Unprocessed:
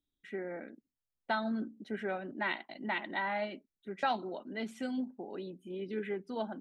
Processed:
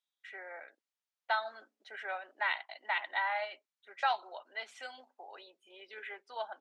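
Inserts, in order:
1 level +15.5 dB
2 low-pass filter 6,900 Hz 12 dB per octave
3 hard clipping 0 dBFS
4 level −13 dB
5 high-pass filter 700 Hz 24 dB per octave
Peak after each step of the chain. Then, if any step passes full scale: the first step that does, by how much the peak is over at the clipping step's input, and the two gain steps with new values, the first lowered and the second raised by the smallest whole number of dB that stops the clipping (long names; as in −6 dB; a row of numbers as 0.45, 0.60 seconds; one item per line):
−4.5, −4.5, −4.5, −17.5, −18.5 dBFS
no step passes full scale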